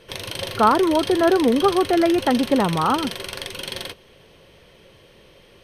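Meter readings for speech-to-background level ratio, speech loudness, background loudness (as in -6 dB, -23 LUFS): 11.0 dB, -19.0 LUFS, -30.0 LUFS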